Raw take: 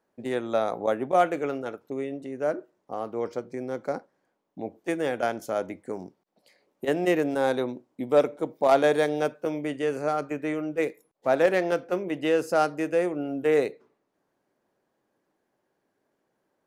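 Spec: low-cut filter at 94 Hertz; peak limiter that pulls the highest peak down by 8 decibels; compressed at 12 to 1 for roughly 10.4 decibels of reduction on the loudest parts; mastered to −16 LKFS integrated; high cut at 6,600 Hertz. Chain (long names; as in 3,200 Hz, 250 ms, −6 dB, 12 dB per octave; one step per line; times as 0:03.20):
high-pass filter 94 Hz
low-pass filter 6,600 Hz
downward compressor 12 to 1, threshold −25 dBFS
level +18.5 dB
brickwall limiter −5 dBFS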